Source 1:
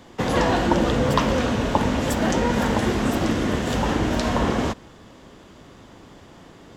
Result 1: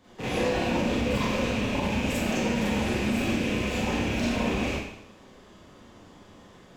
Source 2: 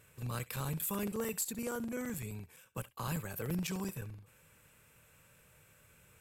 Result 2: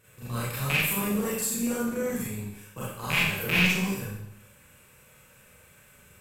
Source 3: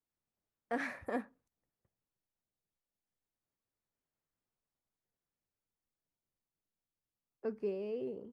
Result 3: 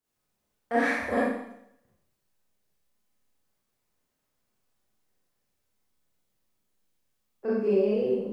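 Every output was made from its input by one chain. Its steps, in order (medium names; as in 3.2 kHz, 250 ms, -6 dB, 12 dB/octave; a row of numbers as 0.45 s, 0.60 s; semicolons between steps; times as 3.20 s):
rattle on loud lows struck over -34 dBFS, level -15 dBFS; dynamic bell 1.2 kHz, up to -5 dB, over -36 dBFS, Q 1.1; Schroeder reverb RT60 0.75 s, combs from 30 ms, DRR -8.5 dB; loudness maximiser +2 dB; normalise loudness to -27 LUFS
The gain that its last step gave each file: -15.5 dB, -3.0 dB, +2.0 dB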